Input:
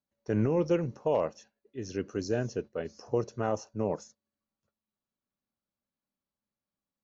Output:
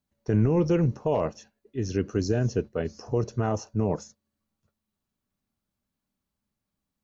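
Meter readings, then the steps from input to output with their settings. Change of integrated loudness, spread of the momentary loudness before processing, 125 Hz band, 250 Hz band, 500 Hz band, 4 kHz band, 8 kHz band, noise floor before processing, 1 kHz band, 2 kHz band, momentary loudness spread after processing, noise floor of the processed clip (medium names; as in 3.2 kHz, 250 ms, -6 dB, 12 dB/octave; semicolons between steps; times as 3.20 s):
+4.5 dB, 11 LU, +9.5 dB, +5.5 dB, +2.5 dB, +4.5 dB, no reading, under -85 dBFS, +2.5 dB, +2.5 dB, 10 LU, -85 dBFS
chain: bass shelf 160 Hz +11.5 dB; band-stop 540 Hz, Q 12; peak limiter -19.5 dBFS, peak gain reduction 5.5 dB; trim +5 dB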